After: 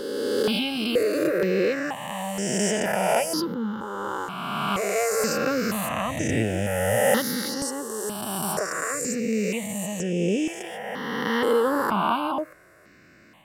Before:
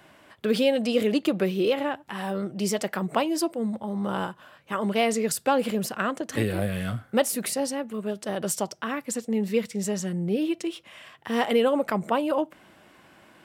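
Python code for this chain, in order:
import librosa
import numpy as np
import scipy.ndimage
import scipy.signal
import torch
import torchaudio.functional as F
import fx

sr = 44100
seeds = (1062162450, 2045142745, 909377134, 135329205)

y = fx.spec_swells(x, sr, rise_s=2.48)
y = fx.peak_eq(y, sr, hz=9700.0, db=-7.0, octaves=0.55, at=(3.42, 5.72))
y = fx.phaser_held(y, sr, hz=2.1, low_hz=660.0, high_hz=4200.0)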